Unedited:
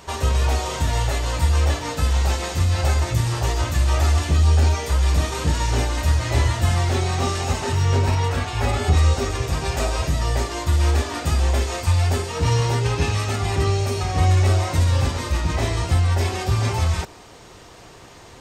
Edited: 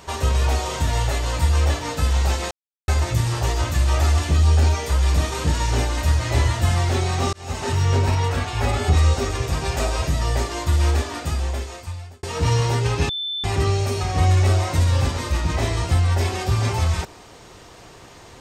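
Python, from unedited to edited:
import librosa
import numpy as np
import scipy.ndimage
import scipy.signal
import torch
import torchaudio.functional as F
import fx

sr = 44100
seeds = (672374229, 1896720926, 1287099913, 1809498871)

y = fx.edit(x, sr, fx.silence(start_s=2.51, length_s=0.37),
    fx.fade_in_span(start_s=7.33, length_s=0.35),
    fx.fade_out_span(start_s=10.83, length_s=1.4),
    fx.bleep(start_s=13.09, length_s=0.35, hz=3530.0, db=-24.0), tone=tone)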